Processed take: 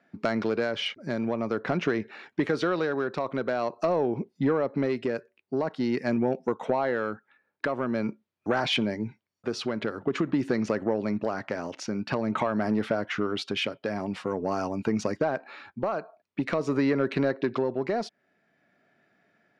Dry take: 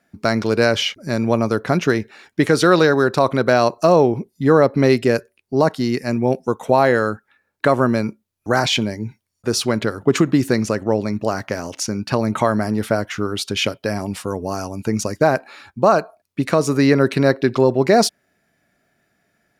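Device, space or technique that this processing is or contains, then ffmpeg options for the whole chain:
AM radio: -af "highpass=160,lowpass=3.2k,acompressor=threshold=-20dB:ratio=6,asoftclip=type=tanh:threshold=-13.5dB,tremolo=f=0.47:d=0.37"

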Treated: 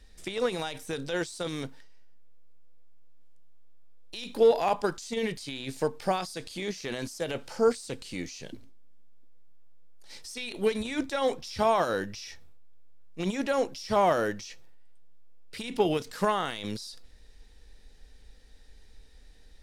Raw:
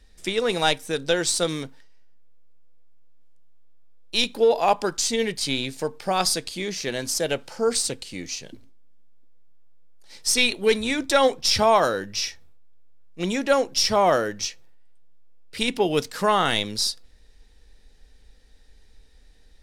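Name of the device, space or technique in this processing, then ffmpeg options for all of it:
de-esser from a sidechain: -filter_complex "[0:a]asplit=2[a][b];[b]highpass=4.8k,apad=whole_len=865563[c];[a][c]sidechaincompress=threshold=-44dB:ratio=5:attack=1.1:release=25"

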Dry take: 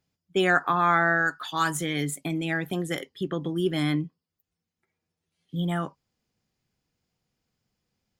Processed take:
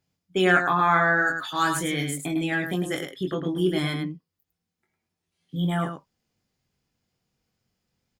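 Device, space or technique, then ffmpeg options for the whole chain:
slapback doubling: -filter_complex "[0:a]asplit=3[a][b][c];[b]adelay=22,volume=-5dB[d];[c]adelay=105,volume=-6dB[e];[a][d][e]amix=inputs=3:normalize=0"

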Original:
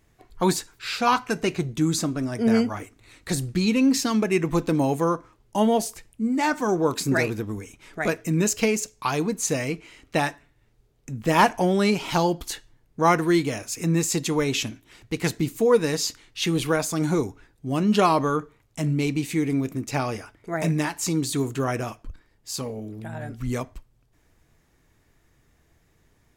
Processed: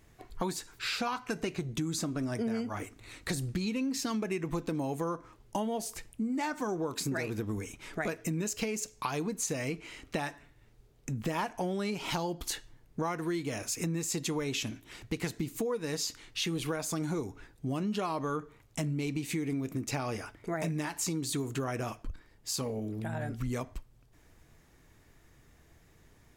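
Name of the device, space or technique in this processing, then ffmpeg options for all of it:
serial compression, peaks first: -af "acompressor=threshold=-28dB:ratio=6,acompressor=threshold=-39dB:ratio=1.5,volume=2dB"

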